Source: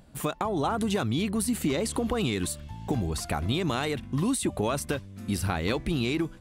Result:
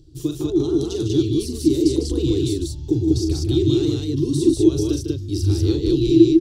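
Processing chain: EQ curve 140 Hz 0 dB, 200 Hz -28 dB, 330 Hz +10 dB, 610 Hz -27 dB, 2200 Hz -27 dB, 3300 Hz -9 dB, 5600 Hz 0 dB, 8800 Hz -15 dB; loudspeakers at several distances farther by 14 m -7 dB, 52 m -7 dB, 66 m -1 dB; gain +7.5 dB

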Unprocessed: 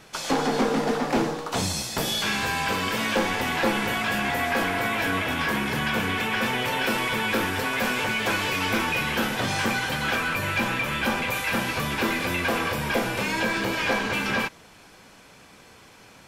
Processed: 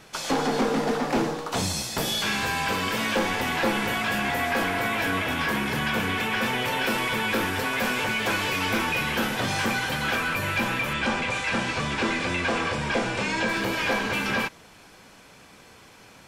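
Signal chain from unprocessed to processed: 10.93–13.49 steep low-pass 8700 Hz 36 dB/oct; soft clip -13 dBFS, distortion -27 dB

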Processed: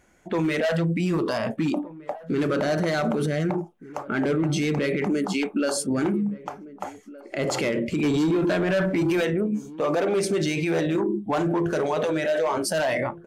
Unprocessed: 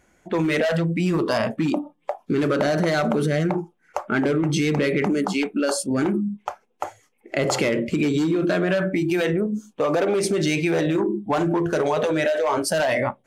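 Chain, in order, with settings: limiter -17 dBFS, peak gain reduction 8.5 dB; 8.03–9.25 sample leveller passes 1; outdoor echo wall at 260 m, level -18 dB

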